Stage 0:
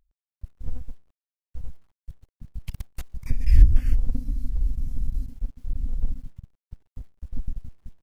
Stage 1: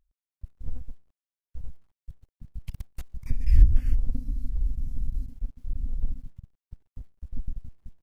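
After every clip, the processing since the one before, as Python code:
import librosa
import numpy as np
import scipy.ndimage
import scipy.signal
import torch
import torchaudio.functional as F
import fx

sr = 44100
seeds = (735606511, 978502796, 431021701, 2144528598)

y = fx.low_shelf(x, sr, hz=370.0, db=3.5)
y = F.gain(torch.from_numpy(y), -6.0).numpy()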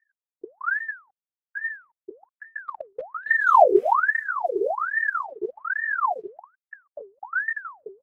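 y = fx.env_lowpass(x, sr, base_hz=350.0, full_db=-20.0)
y = fx.peak_eq(y, sr, hz=150.0, db=-8.0, octaves=1.6)
y = fx.ring_lfo(y, sr, carrier_hz=1100.0, swing_pct=65, hz=1.2)
y = F.gain(torch.from_numpy(y), 2.5).numpy()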